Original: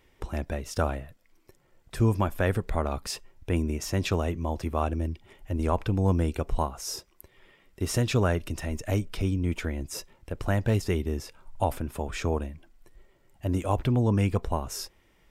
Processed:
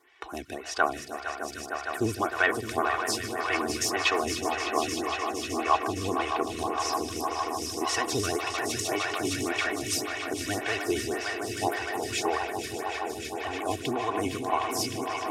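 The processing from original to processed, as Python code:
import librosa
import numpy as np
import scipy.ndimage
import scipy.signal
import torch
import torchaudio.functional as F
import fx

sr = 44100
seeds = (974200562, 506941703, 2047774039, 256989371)

y = fx.weighting(x, sr, curve='A')
y = fx.vibrato(y, sr, rate_hz=14.0, depth_cents=93.0)
y = fx.peak_eq(y, sr, hz=520.0, db=-5.5, octaves=1.4)
y = y + 0.74 * np.pad(y, (int(2.7 * sr / 1000.0), 0))[:len(y)]
y = fx.echo_swell(y, sr, ms=153, loudest=5, wet_db=-10)
y = fx.stagger_phaser(y, sr, hz=1.8)
y = y * 10.0 ** (7.0 / 20.0)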